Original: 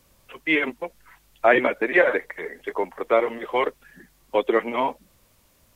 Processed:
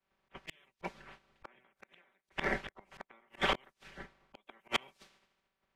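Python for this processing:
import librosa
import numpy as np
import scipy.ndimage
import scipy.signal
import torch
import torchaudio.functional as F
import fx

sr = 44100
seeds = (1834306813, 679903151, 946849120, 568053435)

p1 = fx.spec_clip(x, sr, under_db=24)
p2 = fx.env_lowpass(p1, sr, base_hz=2200.0, full_db=-18.0)
p3 = p2 + 0.6 * np.pad(p2, (int(5.2 * sr / 1000.0), 0))[:len(p2)]
p4 = fx.over_compress(p3, sr, threshold_db=-25.0, ratio=-1.0)
p5 = p3 + F.gain(torch.from_numpy(p4), -2.5).numpy()
p6 = fx.gate_flip(p5, sr, shuts_db=-8.0, range_db=-38)
p7 = np.clip(10.0 ** (16.5 / 20.0) * p6, -1.0, 1.0) / 10.0 ** (16.5 / 20.0)
p8 = fx.auto_swell(p7, sr, attack_ms=154.0)
p9 = 10.0 ** (-20.5 / 20.0) * np.tanh(p8 / 10.0 ** (-20.5 / 20.0))
p10 = fx.band_widen(p9, sr, depth_pct=100)
y = F.gain(torch.from_numpy(p10), -5.5).numpy()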